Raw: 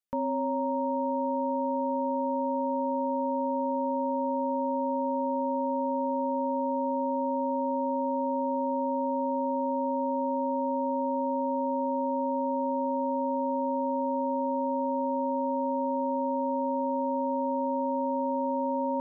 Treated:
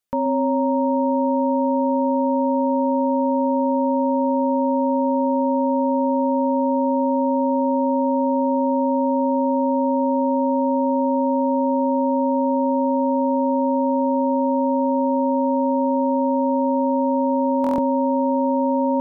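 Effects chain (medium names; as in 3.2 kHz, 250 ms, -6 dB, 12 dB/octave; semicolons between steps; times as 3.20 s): on a send: band-passed feedback delay 130 ms, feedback 40%, band-pass 320 Hz, level -10.5 dB; on the sum: buffer glitch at 17.62 s, samples 1024, times 6; trim +8 dB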